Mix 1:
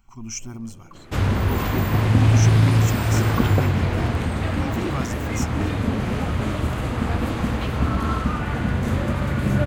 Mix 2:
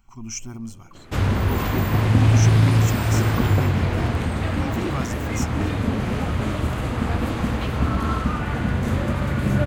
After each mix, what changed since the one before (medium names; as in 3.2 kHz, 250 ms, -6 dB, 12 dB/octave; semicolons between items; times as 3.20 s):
second sound -4.0 dB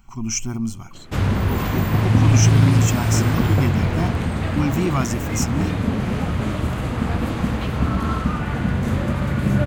speech +7.5 dB; master: add peaking EQ 170 Hz +4.5 dB 0.64 oct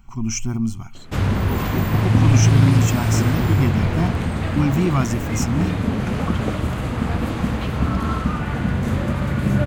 speech: add tone controls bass +4 dB, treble -3 dB; second sound: entry +2.90 s